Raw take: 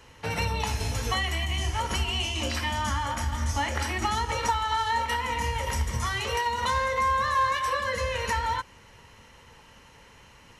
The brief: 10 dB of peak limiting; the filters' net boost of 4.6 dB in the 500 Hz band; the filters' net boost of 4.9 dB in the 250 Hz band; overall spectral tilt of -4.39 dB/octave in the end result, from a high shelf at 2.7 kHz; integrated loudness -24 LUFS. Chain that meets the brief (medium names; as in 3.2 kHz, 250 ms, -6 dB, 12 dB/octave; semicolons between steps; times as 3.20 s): peaking EQ 250 Hz +5 dB; peaking EQ 500 Hz +4 dB; treble shelf 2.7 kHz -3 dB; trim +7 dB; peak limiter -15.5 dBFS